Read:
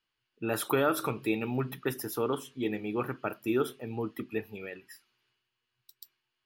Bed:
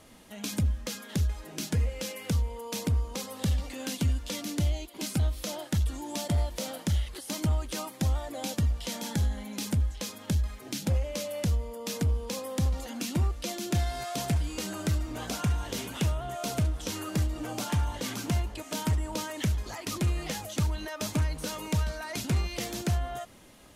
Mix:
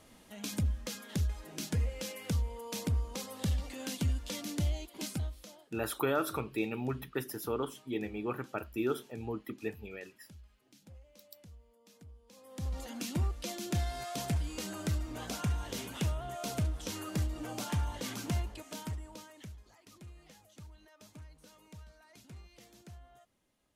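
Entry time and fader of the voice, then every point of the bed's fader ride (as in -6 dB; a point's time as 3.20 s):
5.30 s, -4.0 dB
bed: 5.04 s -4.5 dB
5.85 s -27 dB
12.25 s -27 dB
12.78 s -5 dB
18.42 s -5 dB
19.73 s -23.5 dB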